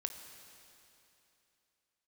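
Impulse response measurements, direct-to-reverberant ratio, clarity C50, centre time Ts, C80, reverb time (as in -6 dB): 6.5 dB, 7.0 dB, 43 ms, 8.0 dB, 2.9 s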